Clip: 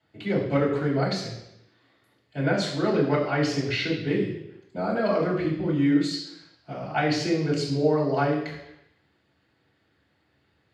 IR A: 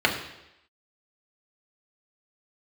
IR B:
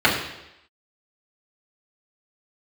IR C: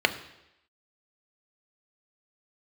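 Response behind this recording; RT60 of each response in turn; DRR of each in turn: B; 0.85 s, 0.85 s, 0.85 s; -0.5 dB, -7.0 dB, 7.5 dB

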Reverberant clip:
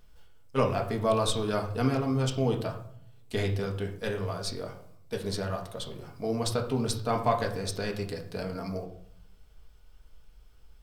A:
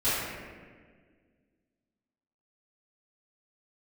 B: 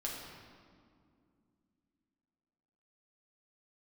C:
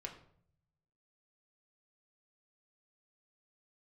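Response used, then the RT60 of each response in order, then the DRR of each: C; 1.7 s, 2.3 s, 0.60 s; -16.0 dB, -3.5 dB, 1.0 dB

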